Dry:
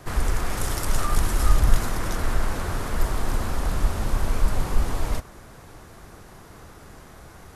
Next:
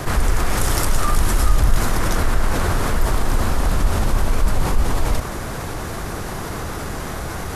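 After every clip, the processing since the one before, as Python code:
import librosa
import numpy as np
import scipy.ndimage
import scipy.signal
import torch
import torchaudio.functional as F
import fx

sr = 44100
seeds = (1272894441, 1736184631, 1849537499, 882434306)

y = fx.env_flatten(x, sr, amount_pct=50)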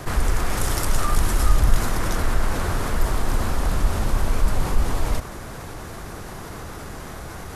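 y = fx.upward_expand(x, sr, threshold_db=-24.0, expansion=1.5)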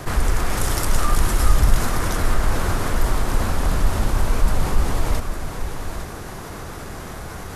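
y = x + 10.0 ** (-9.5 / 20.0) * np.pad(x, (int(854 * sr / 1000.0), 0))[:len(x)]
y = y * 10.0 ** (1.5 / 20.0)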